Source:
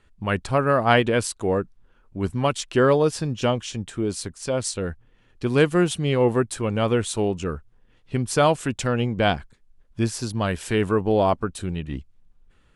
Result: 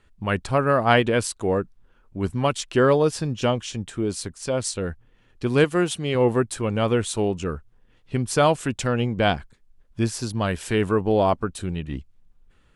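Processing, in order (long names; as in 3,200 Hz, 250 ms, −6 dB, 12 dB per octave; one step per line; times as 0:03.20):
0:05.64–0:06.15: low-shelf EQ 160 Hz −9.5 dB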